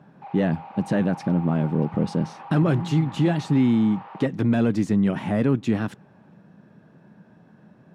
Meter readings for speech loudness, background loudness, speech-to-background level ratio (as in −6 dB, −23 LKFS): −23.0 LKFS, −41.5 LKFS, 18.5 dB